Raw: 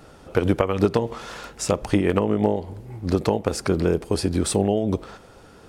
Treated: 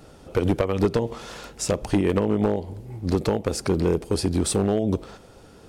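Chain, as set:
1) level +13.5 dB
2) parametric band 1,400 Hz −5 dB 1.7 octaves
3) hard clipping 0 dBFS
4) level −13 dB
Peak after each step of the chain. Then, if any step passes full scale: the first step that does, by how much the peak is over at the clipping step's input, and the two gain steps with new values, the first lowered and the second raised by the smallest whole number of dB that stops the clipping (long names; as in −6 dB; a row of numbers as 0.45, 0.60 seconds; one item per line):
+8.5, +7.5, 0.0, −13.0 dBFS
step 1, 7.5 dB
step 1 +5.5 dB, step 4 −5 dB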